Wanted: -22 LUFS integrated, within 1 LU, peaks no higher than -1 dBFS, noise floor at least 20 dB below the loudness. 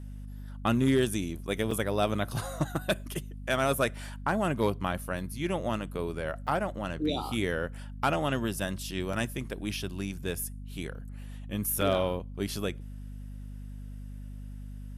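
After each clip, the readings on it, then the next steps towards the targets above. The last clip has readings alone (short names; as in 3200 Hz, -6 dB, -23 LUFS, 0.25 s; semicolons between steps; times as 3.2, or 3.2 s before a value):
dropouts 4; longest dropout 4.2 ms; hum 50 Hz; harmonics up to 250 Hz; hum level -39 dBFS; loudness -31.0 LUFS; peak -14.0 dBFS; loudness target -22.0 LUFS
-> interpolate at 1.71/6.47/9.13/11.81, 4.2 ms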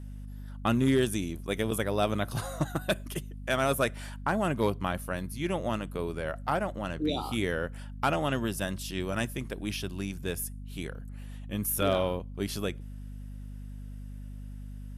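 dropouts 0; hum 50 Hz; harmonics up to 250 Hz; hum level -39 dBFS
-> de-hum 50 Hz, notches 5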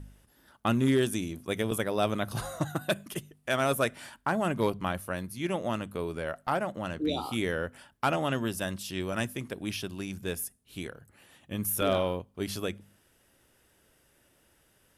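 hum none; loudness -31.5 LUFS; peak -13.0 dBFS; loudness target -22.0 LUFS
-> gain +9.5 dB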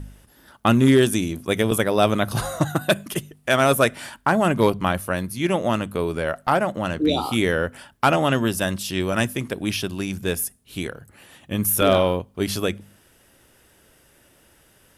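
loudness -22.0 LUFS; peak -3.5 dBFS; noise floor -57 dBFS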